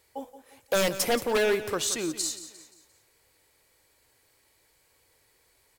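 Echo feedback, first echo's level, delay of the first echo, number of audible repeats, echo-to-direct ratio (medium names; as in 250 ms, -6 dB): 41%, -13.5 dB, 175 ms, 3, -12.5 dB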